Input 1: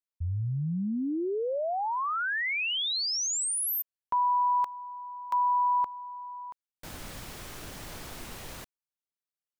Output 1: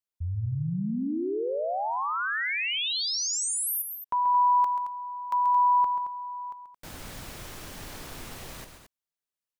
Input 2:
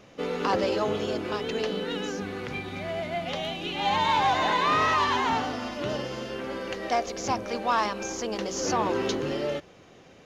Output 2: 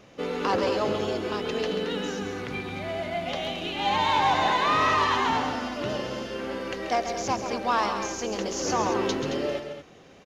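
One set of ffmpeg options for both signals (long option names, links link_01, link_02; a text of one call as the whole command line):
ffmpeg -i in.wav -af "aecho=1:1:134.1|221.6:0.355|0.316" out.wav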